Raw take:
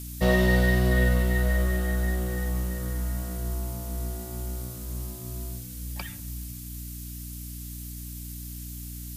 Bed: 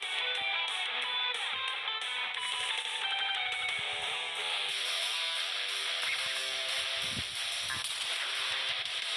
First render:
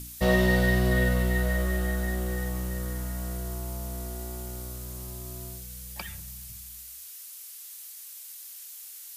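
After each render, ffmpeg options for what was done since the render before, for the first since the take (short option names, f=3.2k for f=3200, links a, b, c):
-af "bandreject=f=60:t=h:w=4,bandreject=f=120:t=h:w=4,bandreject=f=180:t=h:w=4,bandreject=f=240:t=h:w=4,bandreject=f=300:t=h:w=4,bandreject=f=360:t=h:w=4,bandreject=f=420:t=h:w=4,bandreject=f=480:t=h:w=4"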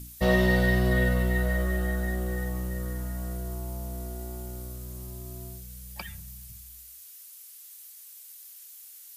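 -af "afftdn=nr=6:nf=-44"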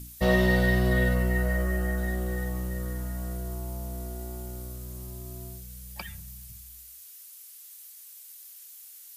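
-filter_complex "[0:a]asettb=1/sr,asplit=3[a][b][c];[a]atrim=end=1.154[d];[b]atrim=start=1.15:end=1.98,asetpts=PTS-STARTPTS,afade=t=in:d=0.004:c=qsin,afade=t=out:st=0.826:d=0.004:c=qsin,equalizer=f=3.6k:w=5.7:g=-12[e];[c]atrim=start=1.976[f];[d][e]acrossfade=d=0.004:c1=hsin:c2=qsin[g];[g][f]acrossfade=d=0.004:c1=qsin:c2=hsin"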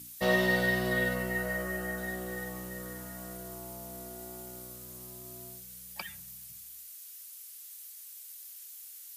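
-af "highpass=180,equalizer=f=240:w=0.39:g=-4.5"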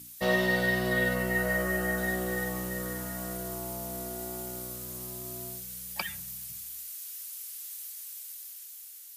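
-af "dynaudnorm=f=510:g=5:m=6.5dB"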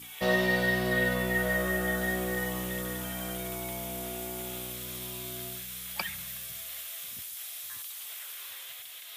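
-filter_complex "[1:a]volume=-14dB[a];[0:a][a]amix=inputs=2:normalize=0"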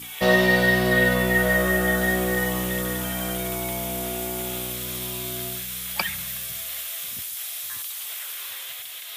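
-af "volume=8dB"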